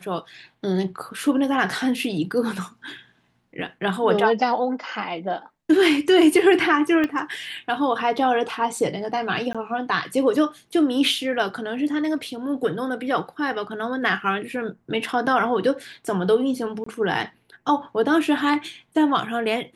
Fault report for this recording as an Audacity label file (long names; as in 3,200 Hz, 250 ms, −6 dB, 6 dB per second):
7.040000	7.040000	click −13 dBFS
9.530000	9.550000	drop-out 16 ms
16.840000	16.860000	drop-out 24 ms